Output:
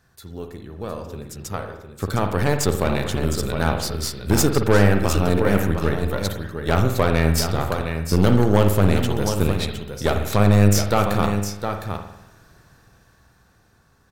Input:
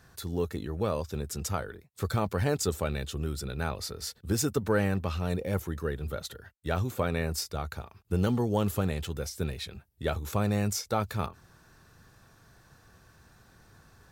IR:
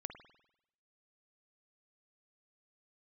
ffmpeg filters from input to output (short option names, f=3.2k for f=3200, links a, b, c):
-filter_complex "[0:a]dynaudnorm=f=340:g=13:m=16.5dB,aecho=1:1:710:0.398,aeval=exprs='0.891*(cos(1*acos(clip(val(0)/0.891,-1,1)))-cos(1*PI/2))+0.112*(cos(6*acos(clip(val(0)/0.891,-1,1)))-cos(6*PI/2))':c=same[a];[1:a]atrim=start_sample=2205[b];[a][b]afir=irnorm=-1:irlink=0"